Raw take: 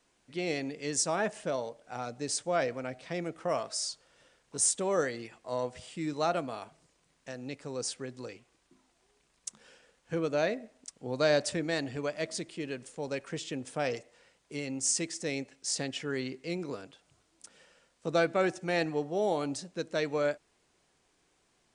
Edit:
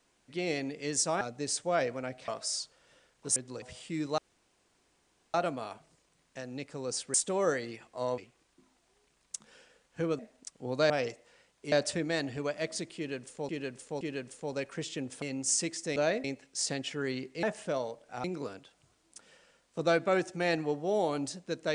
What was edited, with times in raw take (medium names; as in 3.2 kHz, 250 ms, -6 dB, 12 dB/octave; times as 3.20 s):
1.21–2.02 s: move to 16.52 s
3.09–3.57 s: delete
4.65–5.69 s: swap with 8.05–8.31 s
6.25 s: insert room tone 1.16 s
10.32–10.60 s: move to 15.33 s
12.56–13.08 s: loop, 3 plays
13.77–14.59 s: move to 11.31 s